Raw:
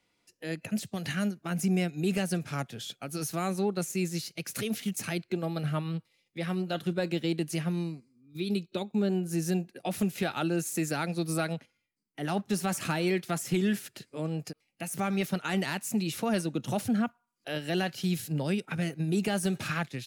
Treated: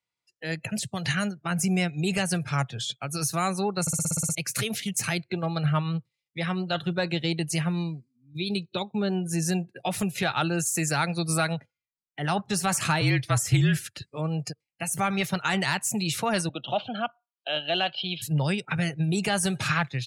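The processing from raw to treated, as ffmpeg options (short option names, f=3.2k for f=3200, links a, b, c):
-filter_complex "[0:a]asettb=1/sr,asplit=3[a][b][c];[a]atrim=end=13.014[d];[b]atrim=start=13.01:end=14.11,asetpts=PTS-STARTPTS,afade=t=in:d=0.004:c=qsin,afade=t=out:st=1.096:d=0.004:c=qsin,afreqshift=-44[e];[c]atrim=start=14.106[f];[d][e]acrossfade=d=0.004:c1=hsin:c2=qsin[g];[g][f]acrossfade=d=0.004:c1=qsin:c2=hsin,asettb=1/sr,asplit=3[h][i][j];[h]atrim=end=16.494[k];[i]atrim=start=16.49:end=18.22,asetpts=PTS-STARTPTS,afade=t=in:d=0.004:c=qsin,afade=t=out:st=1.726:d=0.004:c=qsin,highpass=320,equalizer=f=440:t=q:w=4:g=-6,equalizer=f=660:t=q:w=4:g=6,equalizer=f=1k:t=q:w=4:g=-6,equalizer=f=1.9k:t=q:w=4:g=-10,equalizer=f=3.1k:t=q:w=4:g=8,lowpass=f=4k:w=0.5412,lowpass=f=4k:w=1.3066[l];[j]atrim=start=18.216[m];[k][l]acrossfade=d=0.004:c1=hsin:c2=qsin[n];[n][m]acrossfade=d=0.004:c1=qsin:c2=hsin,asplit=10[o][p][q][r][s][t][u][v][w][x];[o]atrim=end=3.872[y];[p]atrim=start=3.808:end=3.872[z];[q]atrim=start=3.808:end=3.872[aa];[r]atrim=start=3.808:end=3.872[ab];[s]atrim=start=3.808:end=3.872[ac];[t]atrim=start=3.808:end=3.872[ad];[u]atrim=start=3.808:end=3.872[ae];[v]atrim=start=3.808:end=3.872[af];[w]atrim=start=3.808:end=3.872[ag];[x]atrim=start=4.348[ah];[y][z]acrossfade=d=0.004:c1=hsin:c2=hsin[ai];[ai][aa]acrossfade=d=0.004:c1=hsin:c2=hsin[aj];[aj][ab]acrossfade=d=0.004:c1=hsin:c2=hsin[ak];[ak][ac]acrossfade=d=0.004:c1=hsin:c2=hsin[al];[al][ad]acrossfade=d=0.004:c1=hsin:c2=hsin[am];[am][ae]acrossfade=d=0.004:c1=hsin:c2=hsin[an];[an][af]acrossfade=d=0.004:c1=hsin:c2=hsin[ao];[ao][ag]acrossfade=d=0.004:c1=hsin:c2=hsin[ap];[ap][ah]acrossfade=d=0.004:c1=hsin:c2=hsin,afftdn=nr=22:nf=-50,equalizer=f=125:t=o:w=1:g=10,equalizer=f=250:t=o:w=1:g=-7,equalizer=f=1k:t=o:w=1:g=7,equalizer=f=2k:t=o:w=1:g=4,equalizer=f=4k:t=o:w=1:g=5,equalizer=f=8k:t=o:w=1:g=8,acontrast=81,volume=-5.5dB"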